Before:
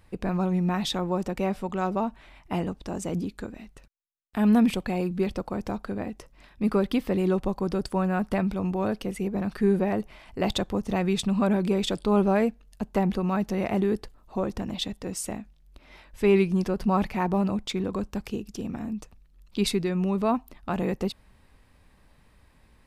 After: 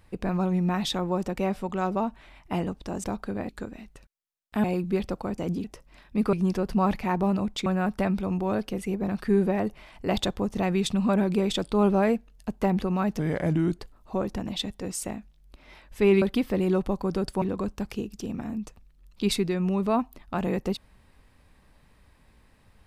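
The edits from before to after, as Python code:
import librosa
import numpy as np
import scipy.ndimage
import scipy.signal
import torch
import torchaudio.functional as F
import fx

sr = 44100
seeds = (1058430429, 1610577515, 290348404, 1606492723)

y = fx.edit(x, sr, fx.swap(start_s=3.04, length_s=0.26, other_s=5.65, other_length_s=0.45),
    fx.cut(start_s=4.45, length_s=0.46),
    fx.swap(start_s=6.79, length_s=1.2, other_s=16.44, other_length_s=1.33),
    fx.speed_span(start_s=13.52, length_s=0.49, speed=0.82), tone=tone)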